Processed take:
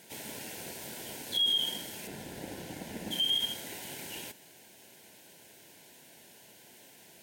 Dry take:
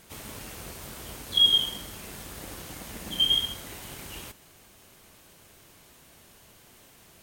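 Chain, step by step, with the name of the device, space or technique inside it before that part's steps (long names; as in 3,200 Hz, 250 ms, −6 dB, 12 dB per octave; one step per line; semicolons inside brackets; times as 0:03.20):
PA system with an anti-feedback notch (high-pass filter 180 Hz 12 dB per octave; Butterworth band-reject 1,200 Hz, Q 2.8; brickwall limiter −21.5 dBFS, peak gain reduction 10.5 dB)
0:02.07–0:03.11: spectral tilt −2 dB per octave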